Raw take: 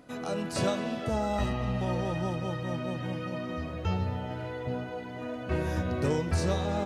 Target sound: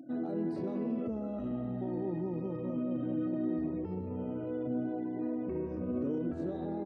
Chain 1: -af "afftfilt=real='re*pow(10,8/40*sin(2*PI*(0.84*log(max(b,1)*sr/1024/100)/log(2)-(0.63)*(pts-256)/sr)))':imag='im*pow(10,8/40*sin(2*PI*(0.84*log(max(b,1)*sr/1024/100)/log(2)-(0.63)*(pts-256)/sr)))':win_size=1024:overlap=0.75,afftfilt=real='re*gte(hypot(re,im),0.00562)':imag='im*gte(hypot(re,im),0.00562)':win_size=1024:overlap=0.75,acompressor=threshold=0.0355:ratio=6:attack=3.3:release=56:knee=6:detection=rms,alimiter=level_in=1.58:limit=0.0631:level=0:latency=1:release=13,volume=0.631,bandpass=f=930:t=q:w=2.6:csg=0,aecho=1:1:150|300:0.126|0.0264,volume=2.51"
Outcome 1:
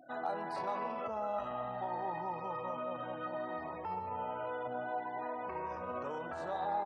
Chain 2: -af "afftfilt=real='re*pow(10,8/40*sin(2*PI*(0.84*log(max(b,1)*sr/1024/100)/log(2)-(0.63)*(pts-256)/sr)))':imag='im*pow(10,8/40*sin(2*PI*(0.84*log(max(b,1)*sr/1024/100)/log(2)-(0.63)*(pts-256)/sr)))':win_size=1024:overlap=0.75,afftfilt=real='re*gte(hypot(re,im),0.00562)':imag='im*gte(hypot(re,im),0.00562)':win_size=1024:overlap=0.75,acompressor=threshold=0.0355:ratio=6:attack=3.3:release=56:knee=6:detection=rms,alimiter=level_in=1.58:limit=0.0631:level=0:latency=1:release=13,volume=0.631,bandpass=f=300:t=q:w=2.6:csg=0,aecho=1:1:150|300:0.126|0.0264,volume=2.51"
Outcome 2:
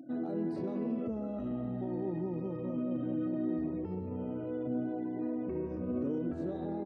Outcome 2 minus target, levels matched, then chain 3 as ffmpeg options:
compression: peak gain reduction +8.5 dB
-af "afftfilt=real='re*pow(10,8/40*sin(2*PI*(0.84*log(max(b,1)*sr/1024/100)/log(2)-(0.63)*(pts-256)/sr)))':imag='im*pow(10,8/40*sin(2*PI*(0.84*log(max(b,1)*sr/1024/100)/log(2)-(0.63)*(pts-256)/sr)))':win_size=1024:overlap=0.75,afftfilt=real='re*gte(hypot(re,im),0.00562)':imag='im*gte(hypot(re,im),0.00562)':win_size=1024:overlap=0.75,alimiter=level_in=1.58:limit=0.0631:level=0:latency=1:release=13,volume=0.631,bandpass=f=300:t=q:w=2.6:csg=0,aecho=1:1:150|300:0.126|0.0264,volume=2.51"

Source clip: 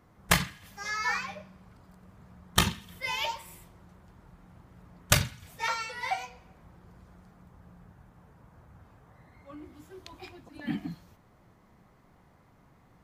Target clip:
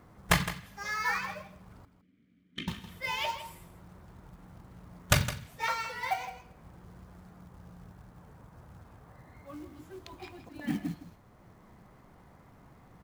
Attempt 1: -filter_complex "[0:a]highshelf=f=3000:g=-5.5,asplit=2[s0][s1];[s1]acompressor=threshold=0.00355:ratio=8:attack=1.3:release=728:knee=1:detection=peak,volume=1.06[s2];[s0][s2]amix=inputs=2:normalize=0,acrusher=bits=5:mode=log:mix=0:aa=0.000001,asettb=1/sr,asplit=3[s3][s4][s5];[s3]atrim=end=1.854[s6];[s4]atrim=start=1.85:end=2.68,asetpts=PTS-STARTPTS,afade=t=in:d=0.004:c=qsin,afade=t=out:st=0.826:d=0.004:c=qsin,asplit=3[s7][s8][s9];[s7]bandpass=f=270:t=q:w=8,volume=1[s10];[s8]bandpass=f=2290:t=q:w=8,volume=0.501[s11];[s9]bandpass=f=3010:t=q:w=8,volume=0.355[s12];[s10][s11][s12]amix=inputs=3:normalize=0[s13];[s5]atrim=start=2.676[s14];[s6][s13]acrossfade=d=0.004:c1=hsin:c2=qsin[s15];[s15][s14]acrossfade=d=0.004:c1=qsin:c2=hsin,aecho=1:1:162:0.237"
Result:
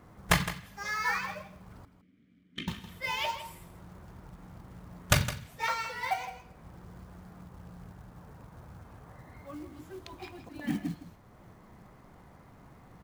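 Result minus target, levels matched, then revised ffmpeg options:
compression: peak gain reduction -8 dB
-filter_complex "[0:a]highshelf=f=3000:g=-5.5,asplit=2[s0][s1];[s1]acompressor=threshold=0.00126:ratio=8:attack=1.3:release=728:knee=1:detection=peak,volume=1.06[s2];[s0][s2]amix=inputs=2:normalize=0,acrusher=bits=5:mode=log:mix=0:aa=0.000001,asettb=1/sr,asplit=3[s3][s4][s5];[s3]atrim=end=1.854[s6];[s4]atrim=start=1.85:end=2.68,asetpts=PTS-STARTPTS,afade=t=in:d=0.004:c=qsin,afade=t=out:st=0.826:d=0.004:c=qsin,asplit=3[s7][s8][s9];[s7]bandpass=f=270:t=q:w=8,volume=1[s10];[s8]bandpass=f=2290:t=q:w=8,volume=0.501[s11];[s9]bandpass=f=3010:t=q:w=8,volume=0.355[s12];[s10][s11][s12]amix=inputs=3:normalize=0[s13];[s5]atrim=start=2.676[s14];[s6][s13]acrossfade=d=0.004:c1=hsin:c2=qsin[s15];[s15][s14]acrossfade=d=0.004:c1=qsin:c2=hsin,aecho=1:1:162:0.237"

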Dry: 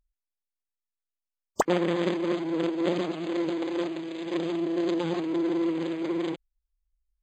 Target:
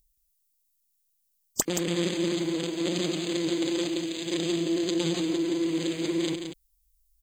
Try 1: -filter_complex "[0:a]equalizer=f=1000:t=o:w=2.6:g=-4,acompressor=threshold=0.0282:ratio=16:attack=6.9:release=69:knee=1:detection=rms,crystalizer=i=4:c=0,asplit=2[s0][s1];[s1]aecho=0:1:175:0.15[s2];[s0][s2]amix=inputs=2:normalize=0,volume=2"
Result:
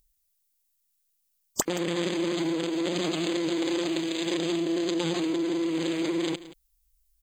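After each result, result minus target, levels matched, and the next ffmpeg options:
echo-to-direct -9.5 dB; 1 kHz band +4.5 dB
-filter_complex "[0:a]equalizer=f=1000:t=o:w=2.6:g=-4,acompressor=threshold=0.0282:ratio=16:attack=6.9:release=69:knee=1:detection=rms,crystalizer=i=4:c=0,asplit=2[s0][s1];[s1]aecho=0:1:175:0.447[s2];[s0][s2]amix=inputs=2:normalize=0,volume=2"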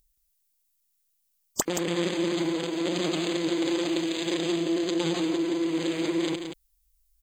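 1 kHz band +4.5 dB
-filter_complex "[0:a]equalizer=f=1000:t=o:w=2.6:g=-13.5,acompressor=threshold=0.0282:ratio=16:attack=6.9:release=69:knee=1:detection=rms,crystalizer=i=4:c=0,asplit=2[s0][s1];[s1]aecho=0:1:175:0.447[s2];[s0][s2]amix=inputs=2:normalize=0,volume=2"

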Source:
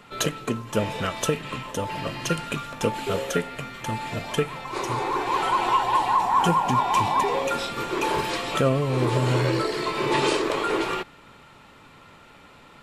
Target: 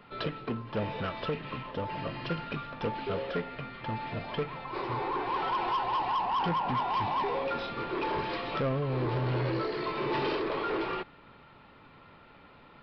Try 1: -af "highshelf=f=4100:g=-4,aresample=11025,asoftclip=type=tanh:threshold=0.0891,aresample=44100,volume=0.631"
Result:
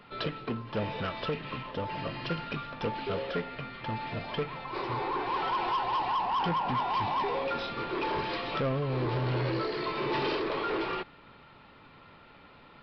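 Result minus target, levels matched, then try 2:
8 kHz band +2.5 dB
-af "highshelf=f=4100:g=-11,aresample=11025,asoftclip=type=tanh:threshold=0.0891,aresample=44100,volume=0.631"

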